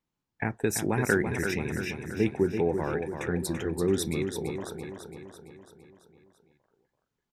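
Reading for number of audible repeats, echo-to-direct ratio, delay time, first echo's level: 6, -5.5 dB, 0.336 s, -7.0 dB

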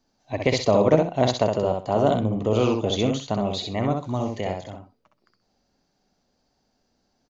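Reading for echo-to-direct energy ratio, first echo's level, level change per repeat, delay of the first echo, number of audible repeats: -4.0 dB, -4.0 dB, -14.0 dB, 64 ms, 2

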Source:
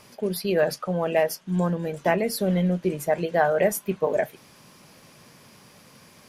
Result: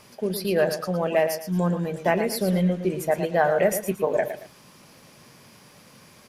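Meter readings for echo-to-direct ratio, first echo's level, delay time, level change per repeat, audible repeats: -9.0 dB, -9.5 dB, 0.113 s, -11.0 dB, 2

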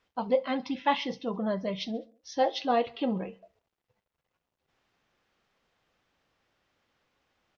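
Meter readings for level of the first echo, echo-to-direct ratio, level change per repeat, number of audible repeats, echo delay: -23.0 dB, -21.5 dB, -5.5 dB, 3, 68 ms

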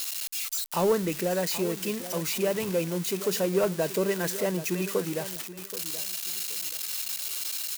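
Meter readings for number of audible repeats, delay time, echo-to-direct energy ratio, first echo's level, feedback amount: 2, 0.778 s, -13.5 dB, -14.0 dB, 24%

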